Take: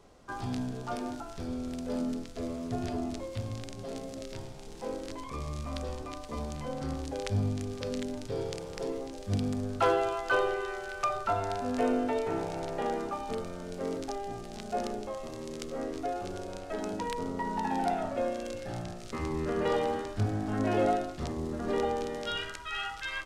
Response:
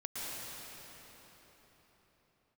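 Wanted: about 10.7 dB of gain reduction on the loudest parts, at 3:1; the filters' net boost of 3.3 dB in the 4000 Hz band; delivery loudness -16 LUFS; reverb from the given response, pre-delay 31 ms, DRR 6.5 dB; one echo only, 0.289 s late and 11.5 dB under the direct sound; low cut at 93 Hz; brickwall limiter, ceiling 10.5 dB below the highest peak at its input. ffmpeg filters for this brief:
-filter_complex "[0:a]highpass=93,equalizer=f=4k:t=o:g=4.5,acompressor=threshold=-37dB:ratio=3,alimiter=level_in=6dB:limit=-24dB:level=0:latency=1,volume=-6dB,aecho=1:1:289:0.266,asplit=2[a][b];[1:a]atrim=start_sample=2205,adelay=31[c];[b][c]afir=irnorm=-1:irlink=0,volume=-9.5dB[d];[a][d]amix=inputs=2:normalize=0,volume=23.5dB"

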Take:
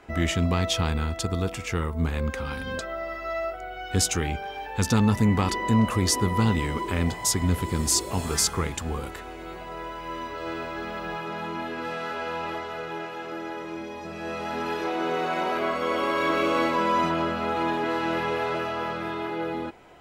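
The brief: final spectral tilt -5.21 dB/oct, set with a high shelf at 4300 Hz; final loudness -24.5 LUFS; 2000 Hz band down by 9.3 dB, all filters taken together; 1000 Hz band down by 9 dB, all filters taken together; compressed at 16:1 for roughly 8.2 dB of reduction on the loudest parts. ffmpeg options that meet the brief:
-af "equalizer=f=1k:t=o:g=-9,equalizer=f=2k:t=o:g=-7.5,highshelf=f=4.3k:g=-6.5,acompressor=threshold=-25dB:ratio=16,volume=8.5dB"

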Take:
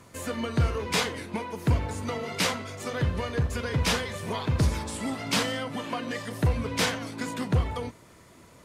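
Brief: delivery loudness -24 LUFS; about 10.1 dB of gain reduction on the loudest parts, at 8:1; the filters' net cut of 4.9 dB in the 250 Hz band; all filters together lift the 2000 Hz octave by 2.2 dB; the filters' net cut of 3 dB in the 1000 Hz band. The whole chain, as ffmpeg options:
-af "equalizer=f=250:t=o:g=-6.5,equalizer=f=1k:t=o:g=-4.5,equalizer=f=2k:t=o:g=4,acompressor=threshold=-30dB:ratio=8,volume=11dB"

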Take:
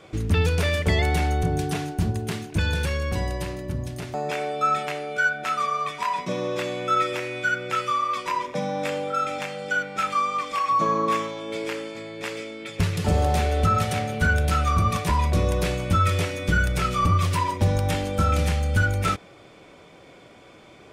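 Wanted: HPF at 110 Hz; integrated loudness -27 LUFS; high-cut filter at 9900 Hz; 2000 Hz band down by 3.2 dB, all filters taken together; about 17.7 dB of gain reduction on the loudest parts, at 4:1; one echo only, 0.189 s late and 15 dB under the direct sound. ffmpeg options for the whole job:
-af "highpass=110,lowpass=9.9k,equalizer=f=2k:t=o:g=-5,acompressor=threshold=-42dB:ratio=4,aecho=1:1:189:0.178,volume=15dB"

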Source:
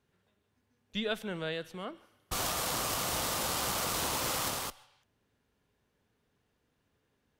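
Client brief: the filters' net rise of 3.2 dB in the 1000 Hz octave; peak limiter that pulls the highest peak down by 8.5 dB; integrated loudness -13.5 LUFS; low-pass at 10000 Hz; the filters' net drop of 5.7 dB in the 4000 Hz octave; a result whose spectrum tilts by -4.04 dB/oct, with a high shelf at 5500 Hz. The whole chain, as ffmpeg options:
-af "lowpass=10k,equalizer=f=1k:t=o:g=4.5,equalizer=f=4k:t=o:g=-6,highshelf=f=5.5k:g=-4,volume=23.5dB,alimiter=limit=-4dB:level=0:latency=1"

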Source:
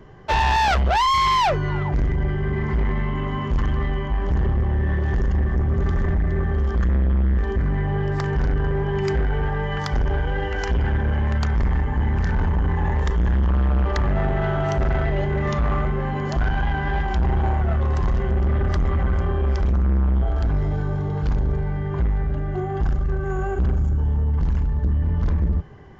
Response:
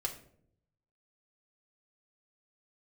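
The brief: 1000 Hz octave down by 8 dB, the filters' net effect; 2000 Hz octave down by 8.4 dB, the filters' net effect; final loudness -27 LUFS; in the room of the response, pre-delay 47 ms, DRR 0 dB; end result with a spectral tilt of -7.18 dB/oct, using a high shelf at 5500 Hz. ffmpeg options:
-filter_complex "[0:a]equalizer=f=1k:t=o:g=-8,equalizer=f=2k:t=o:g=-9,highshelf=f=5.5k:g=8.5,asplit=2[a][b];[1:a]atrim=start_sample=2205,adelay=47[c];[b][c]afir=irnorm=-1:irlink=0,volume=-1.5dB[d];[a][d]amix=inputs=2:normalize=0,volume=-7.5dB"

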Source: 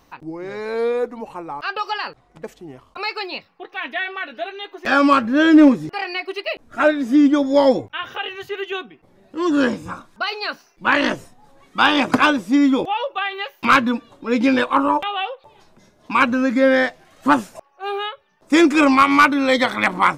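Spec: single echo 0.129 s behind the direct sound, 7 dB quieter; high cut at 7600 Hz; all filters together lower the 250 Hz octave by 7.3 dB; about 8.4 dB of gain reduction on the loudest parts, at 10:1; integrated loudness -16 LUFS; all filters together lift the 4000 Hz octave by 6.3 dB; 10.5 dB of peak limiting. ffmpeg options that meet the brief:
-af "lowpass=7.6k,equalizer=f=250:t=o:g=-9,equalizer=f=4k:t=o:g=8.5,acompressor=threshold=-16dB:ratio=10,alimiter=limit=-13.5dB:level=0:latency=1,aecho=1:1:129:0.447,volume=8.5dB"

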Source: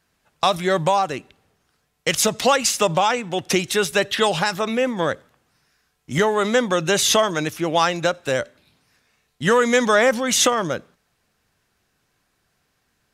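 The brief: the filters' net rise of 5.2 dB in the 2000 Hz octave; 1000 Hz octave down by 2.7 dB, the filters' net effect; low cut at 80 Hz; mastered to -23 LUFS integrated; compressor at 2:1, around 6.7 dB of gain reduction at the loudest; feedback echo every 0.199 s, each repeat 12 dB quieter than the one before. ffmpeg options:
-af "highpass=80,equalizer=f=1k:t=o:g=-6,equalizer=f=2k:t=o:g=8.5,acompressor=threshold=-23dB:ratio=2,aecho=1:1:199|398|597:0.251|0.0628|0.0157,volume=0.5dB"

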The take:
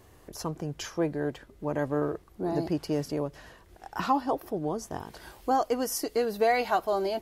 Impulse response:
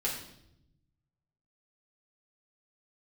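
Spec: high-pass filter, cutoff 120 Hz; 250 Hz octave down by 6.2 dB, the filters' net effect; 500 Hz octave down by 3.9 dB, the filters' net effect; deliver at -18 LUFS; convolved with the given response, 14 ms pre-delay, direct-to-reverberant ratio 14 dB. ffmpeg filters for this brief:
-filter_complex "[0:a]highpass=120,equalizer=f=250:t=o:g=-7,equalizer=f=500:t=o:g=-3,asplit=2[a][b];[1:a]atrim=start_sample=2205,adelay=14[c];[b][c]afir=irnorm=-1:irlink=0,volume=-19.5dB[d];[a][d]amix=inputs=2:normalize=0,volume=15dB"

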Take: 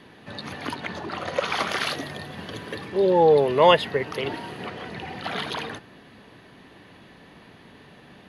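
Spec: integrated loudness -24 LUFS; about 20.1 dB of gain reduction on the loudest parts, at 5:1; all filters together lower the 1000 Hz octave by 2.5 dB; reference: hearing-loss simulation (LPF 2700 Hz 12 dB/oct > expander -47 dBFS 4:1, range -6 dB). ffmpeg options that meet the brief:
-af "equalizer=f=1k:t=o:g=-3,acompressor=threshold=-37dB:ratio=5,lowpass=2.7k,agate=range=-6dB:threshold=-47dB:ratio=4,volume=17.5dB"

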